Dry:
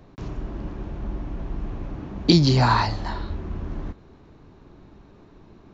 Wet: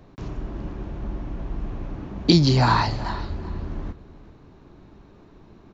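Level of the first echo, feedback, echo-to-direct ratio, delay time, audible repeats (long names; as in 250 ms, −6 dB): −17.0 dB, 19%, −17.0 dB, 382 ms, 2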